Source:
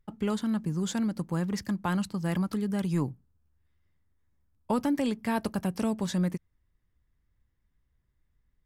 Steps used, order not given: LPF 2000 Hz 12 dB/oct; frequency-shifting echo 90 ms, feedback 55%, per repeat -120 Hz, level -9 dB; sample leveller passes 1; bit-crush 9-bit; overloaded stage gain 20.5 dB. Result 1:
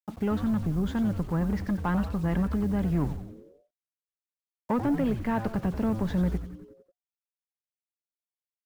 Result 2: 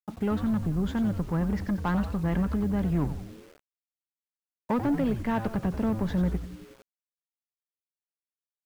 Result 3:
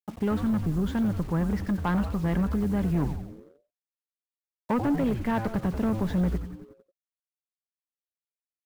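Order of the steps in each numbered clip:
overloaded stage > sample leveller > LPF > bit-crush > frequency-shifting echo; LPF > overloaded stage > sample leveller > frequency-shifting echo > bit-crush; LPF > bit-crush > frequency-shifting echo > sample leveller > overloaded stage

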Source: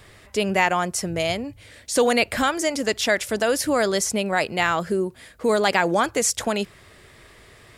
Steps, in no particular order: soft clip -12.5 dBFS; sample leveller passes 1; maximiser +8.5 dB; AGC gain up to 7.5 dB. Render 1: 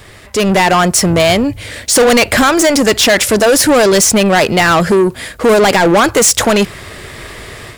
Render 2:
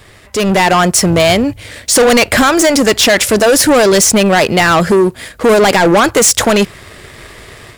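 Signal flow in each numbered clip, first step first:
maximiser > soft clip > AGC > sample leveller; sample leveller > maximiser > soft clip > AGC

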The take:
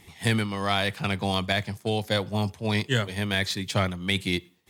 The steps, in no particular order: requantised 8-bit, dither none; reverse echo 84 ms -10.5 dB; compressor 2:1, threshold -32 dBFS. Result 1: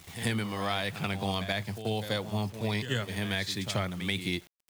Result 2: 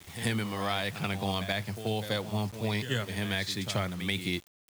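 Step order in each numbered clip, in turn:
requantised > compressor > reverse echo; compressor > reverse echo > requantised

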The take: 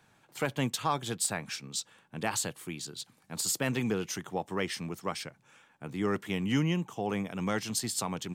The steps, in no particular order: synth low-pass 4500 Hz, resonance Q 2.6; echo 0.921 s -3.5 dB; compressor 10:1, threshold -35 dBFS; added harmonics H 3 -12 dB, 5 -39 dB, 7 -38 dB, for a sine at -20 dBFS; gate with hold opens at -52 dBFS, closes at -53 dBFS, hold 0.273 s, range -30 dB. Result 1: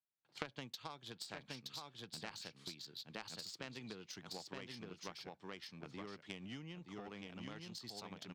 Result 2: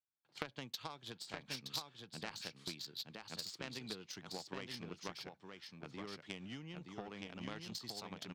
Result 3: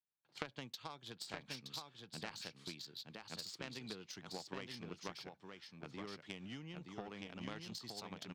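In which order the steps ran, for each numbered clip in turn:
echo > gate with hold > synth low-pass > compressor > added harmonics; compressor > echo > gate with hold > synth low-pass > added harmonics; gate with hold > synth low-pass > compressor > echo > added harmonics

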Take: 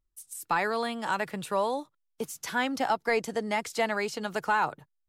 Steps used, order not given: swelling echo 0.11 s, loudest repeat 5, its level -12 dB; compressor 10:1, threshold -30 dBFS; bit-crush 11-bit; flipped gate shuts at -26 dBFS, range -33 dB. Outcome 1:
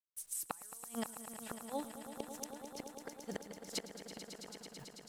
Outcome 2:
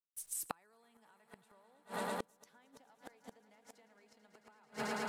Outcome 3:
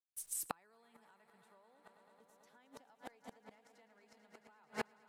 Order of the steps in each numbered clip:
compressor > bit-crush > flipped gate > swelling echo; bit-crush > compressor > swelling echo > flipped gate; bit-crush > swelling echo > compressor > flipped gate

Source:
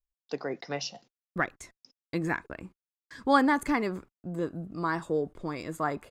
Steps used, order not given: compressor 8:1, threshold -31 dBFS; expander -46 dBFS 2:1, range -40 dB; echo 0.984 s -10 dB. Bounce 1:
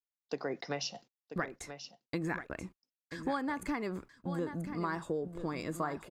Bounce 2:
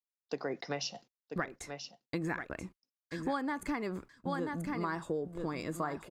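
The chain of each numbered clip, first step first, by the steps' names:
compressor > echo > expander; echo > compressor > expander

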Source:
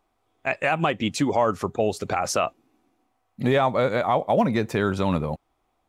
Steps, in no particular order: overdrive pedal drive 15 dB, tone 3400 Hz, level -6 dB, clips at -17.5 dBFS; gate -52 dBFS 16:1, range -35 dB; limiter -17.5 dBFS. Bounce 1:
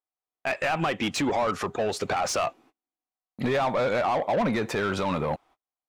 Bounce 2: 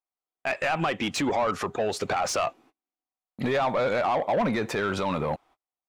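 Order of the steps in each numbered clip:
gate > overdrive pedal > limiter; gate > limiter > overdrive pedal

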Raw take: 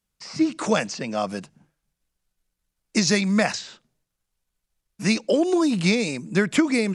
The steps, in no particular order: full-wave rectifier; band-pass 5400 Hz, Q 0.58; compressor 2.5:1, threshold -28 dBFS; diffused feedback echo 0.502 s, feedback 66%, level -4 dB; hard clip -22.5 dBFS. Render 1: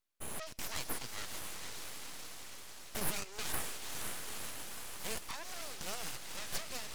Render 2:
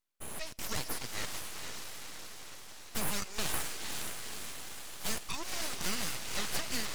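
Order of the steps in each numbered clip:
hard clip > diffused feedback echo > compressor > band-pass > full-wave rectifier; band-pass > hard clip > compressor > diffused feedback echo > full-wave rectifier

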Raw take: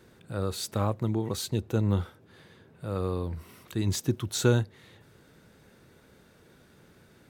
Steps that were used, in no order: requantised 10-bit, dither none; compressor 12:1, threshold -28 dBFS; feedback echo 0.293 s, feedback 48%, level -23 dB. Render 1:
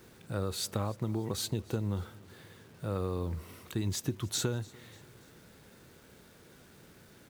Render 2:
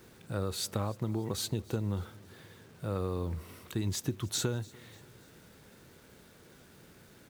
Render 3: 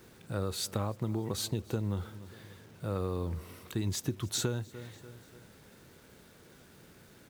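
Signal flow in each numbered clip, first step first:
compressor > requantised > feedback echo; compressor > feedback echo > requantised; feedback echo > compressor > requantised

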